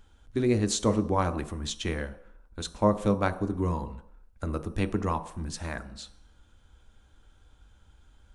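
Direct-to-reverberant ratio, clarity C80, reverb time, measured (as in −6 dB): 9.0 dB, 17.0 dB, non-exponential decay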